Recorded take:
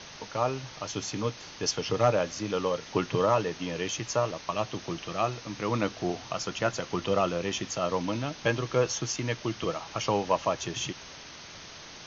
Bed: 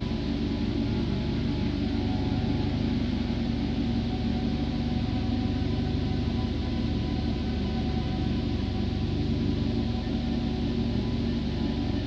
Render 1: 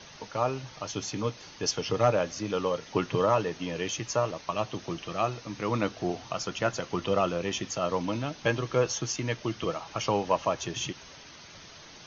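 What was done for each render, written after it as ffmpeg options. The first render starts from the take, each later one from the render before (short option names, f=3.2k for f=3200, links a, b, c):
-af "afftdn=nr=6:nf=-46"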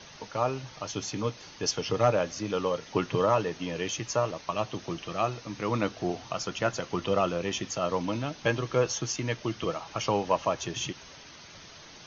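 -af anull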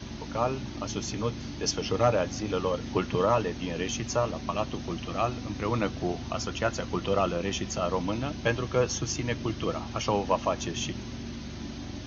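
-filter_complex "[1:a]volume=-10.5dB[a];[0:a][a]amix=inputs=2:normalize=0"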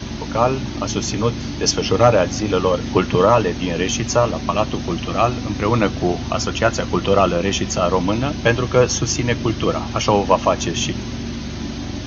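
-af "volume=11dB,alimiter=limit=-2dB:level=0:latency=1"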